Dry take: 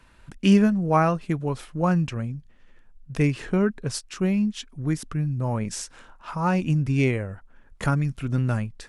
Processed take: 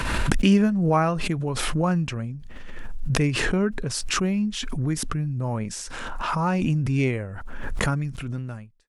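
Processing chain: fade out at the end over 1.08 s; swell ahead of each attack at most 24 dB/s; trim -1.5 dB

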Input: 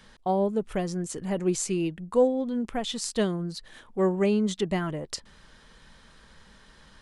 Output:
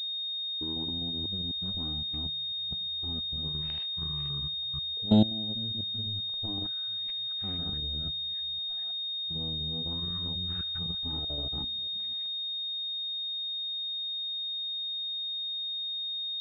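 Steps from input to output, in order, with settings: chunks repeated in reverse 108 ms, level -3.5 dB; Chebyshev shaper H 3 -12 dB, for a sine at -12 dBFS; level held to a coarse grid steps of 20 dB; speed mistake 78 rpm record played at 33 rpm; class-D stage that switches slowly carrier 3.7 kHz; trim +1.5 dB

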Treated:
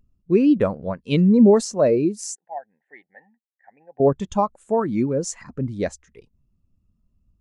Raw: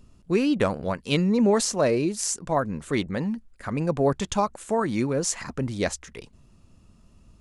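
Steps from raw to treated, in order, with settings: 2.35–4.00 s: two resonant band-passes 1.2 kHz, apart 1.2 oct; spectral contrast expander 1.5:1; trim +2.5 dB

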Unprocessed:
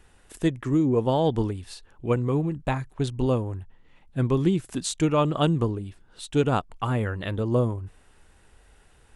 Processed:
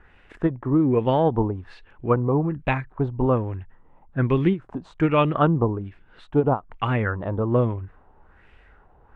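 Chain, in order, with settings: LFO low-pass sine 1.2 Hz 850–2500 Hz; endings held to a fixed fall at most 300 dB/s; trim +2 dB

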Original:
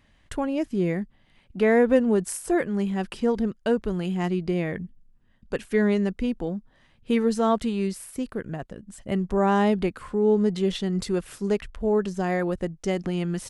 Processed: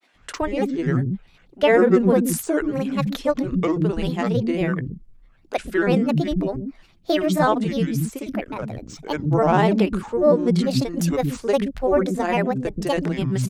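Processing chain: granulator, grains 20 per s, spray 30 ms, pitch spread up and down by 7 st; bands offset in time highs, lows 130 ms, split 290 Hz; trim +6.5 dB

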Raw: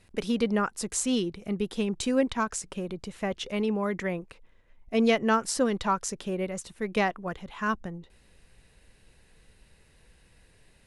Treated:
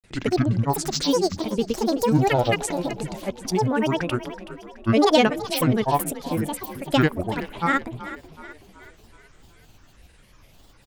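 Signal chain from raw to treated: granulator, grains 20 per s, pitch spread up and down by 12 st; frequency-shifting echo 375 ms, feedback 48%, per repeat +35 Hz, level -14 dB; trim +7 dB

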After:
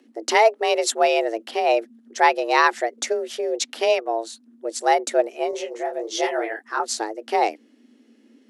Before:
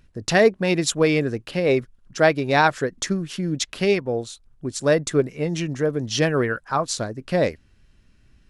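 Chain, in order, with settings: frequency shift +220 Hz; 5.51–6.80 s: detune thickener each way 50 cents

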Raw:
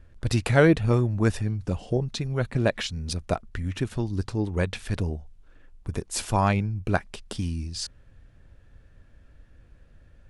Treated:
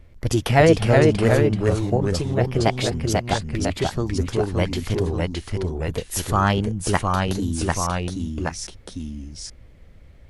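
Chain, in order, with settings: formant shift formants +4 st; ever faster or slower copies 334 ms, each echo -1 st, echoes 2; trim +3 dB

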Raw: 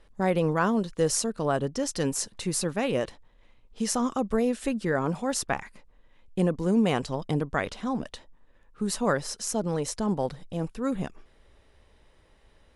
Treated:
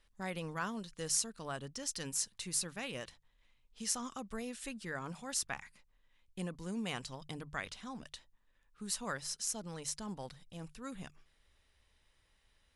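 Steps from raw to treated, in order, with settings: amplifier tone stack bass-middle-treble 5-5-5; hum notches 50/100/150 Hz; trim +1.5 dB

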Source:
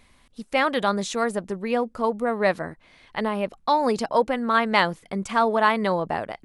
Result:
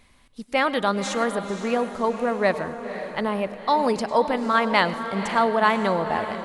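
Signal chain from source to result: echo that smears into a reverb 522 ms, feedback 44%, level -10 dB; on a send at -16 dB: reverberation RT60 0.45 s, pre-delay 95 ms

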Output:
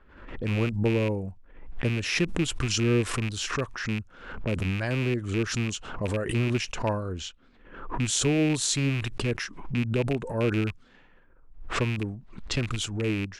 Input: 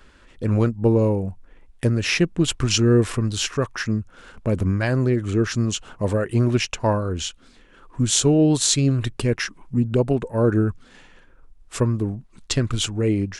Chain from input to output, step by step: rattle on loud lows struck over -22 dBFS, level -15 dBFS; level-controlled noise filter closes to 1.7 kHz, open at -18.5 dBFS; swell ahead of each attack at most 74 dB/s; trim -7.5 dB

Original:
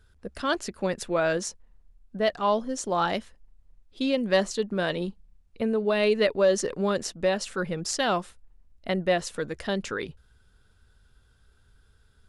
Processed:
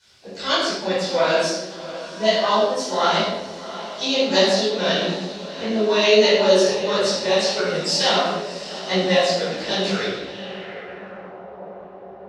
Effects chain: fifteen-band graphic EQ 250 Hz -9 dB, 4 kHz +4 dB, 10 kHz -10 dB; echo that smears into a reverb 708 ms, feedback 68%, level -14.5 dB; word length cut 10-bit, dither triangular; high-pass 150 Hz 12 dB/octave; hum notches 50/100/150/200/250/300/350/400/450/500 Hz; low-pass sweep 4.9 kHz -> 920 Hz, 10.00–11.43 s; harmony voices +7 st -12 dB; peaking EQ 1.4 kHz -4 dB 1.4 oct; simulated room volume 450 m³, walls mixed, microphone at 4.8 m; detune thickener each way 54 cents

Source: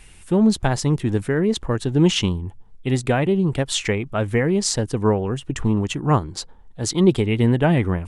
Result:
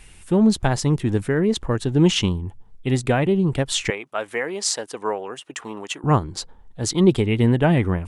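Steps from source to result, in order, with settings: 3.90–6.04 s: high-pass 570 Hz 12 dB/octave

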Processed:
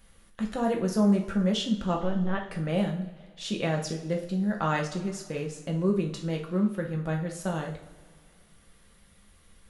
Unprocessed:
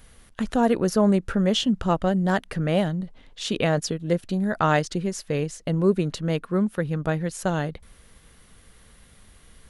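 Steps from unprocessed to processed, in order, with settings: 1.97–2.47 s: LPC vocoder at 8 kHz pitch kept; two-slope reverb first 0.45 s, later 2.1 s, from -18 dB, DRR 0.5 dB; trim -8.5 dB

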